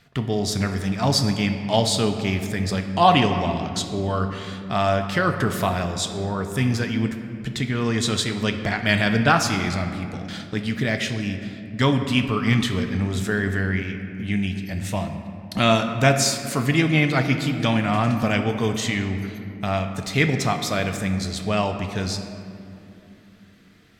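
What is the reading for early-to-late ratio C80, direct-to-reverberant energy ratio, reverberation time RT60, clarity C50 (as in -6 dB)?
8.5 dB, 5.5 dB, 2.9 s, 7.5 dB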